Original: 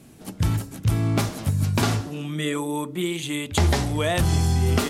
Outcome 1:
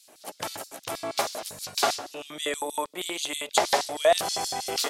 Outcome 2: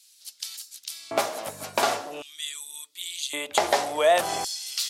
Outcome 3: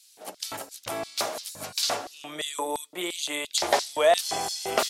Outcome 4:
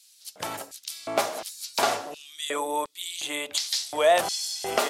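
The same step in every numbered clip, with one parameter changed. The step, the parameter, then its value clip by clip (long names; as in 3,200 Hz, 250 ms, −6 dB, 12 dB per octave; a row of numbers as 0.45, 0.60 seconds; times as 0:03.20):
auto-filter high-pass, speed: 6.3, 0.45, 2.9, 1.4 Hertz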